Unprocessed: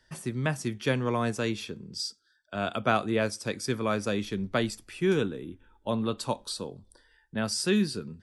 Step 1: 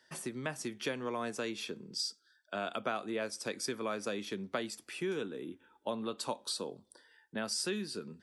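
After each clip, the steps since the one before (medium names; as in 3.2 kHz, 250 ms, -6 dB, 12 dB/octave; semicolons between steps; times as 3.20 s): compression 4:1, threshold -32 dBFS, peak gain reduction 11.5 dB; high-pass 250 Hz 12 dB/octave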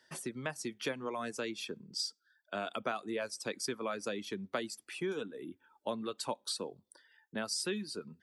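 reverb removal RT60 0.72 s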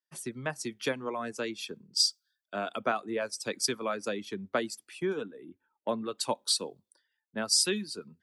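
three bands expanded up and down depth 100%; trim +4 dB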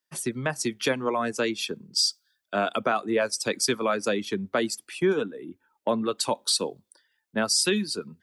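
peak limiter -22 dBFS, peak gain reduction 9.5 dB; trim +8.5 dB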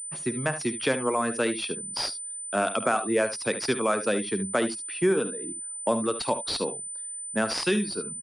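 early reflections 52 ms -16.5 dB, 73 ms -12 dB; class-D stage that switches slowly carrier 9 kHz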